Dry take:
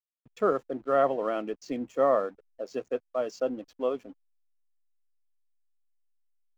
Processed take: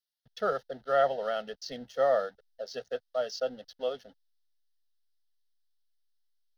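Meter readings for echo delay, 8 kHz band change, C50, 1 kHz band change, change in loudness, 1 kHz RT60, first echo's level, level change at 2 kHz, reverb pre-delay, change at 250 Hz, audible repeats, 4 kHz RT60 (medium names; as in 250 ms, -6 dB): no echo, no reading, no reverb, -2.0 dB, -2.0 dB, no reverb, no echo, +2.0 dB, no reverb, -12.0 dB, no echo, no reverb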